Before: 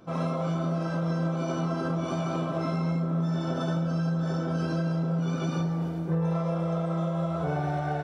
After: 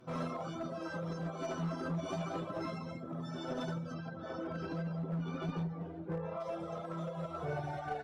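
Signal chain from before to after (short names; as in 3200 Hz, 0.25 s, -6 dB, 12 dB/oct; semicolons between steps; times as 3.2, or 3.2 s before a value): 3.93–6.39 LPF 4100 Hz -> 2600 Hz 12 dB/oct; reverb removal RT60 1.5 s; flange 0.28 Hz, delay 7.9 ms, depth 3.2 ms, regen +2%; one-sided clip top -32 dBFS; gain -1.5 dB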